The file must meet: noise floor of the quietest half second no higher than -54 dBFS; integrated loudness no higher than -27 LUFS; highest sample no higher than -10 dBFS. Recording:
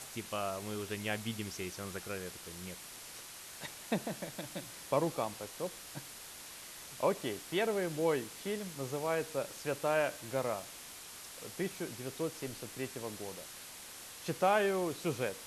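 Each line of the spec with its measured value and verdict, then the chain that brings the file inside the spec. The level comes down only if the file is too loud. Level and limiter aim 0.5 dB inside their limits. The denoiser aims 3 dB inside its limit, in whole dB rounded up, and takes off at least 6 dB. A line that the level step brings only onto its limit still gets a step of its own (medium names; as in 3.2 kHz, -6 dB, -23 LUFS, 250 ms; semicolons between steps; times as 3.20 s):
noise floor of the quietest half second -49 dBFS: fail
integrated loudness -37.5 LUFS: pass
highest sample -17.0 dBFS: pass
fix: noise reduction 8 dB, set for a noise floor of -49 dBFS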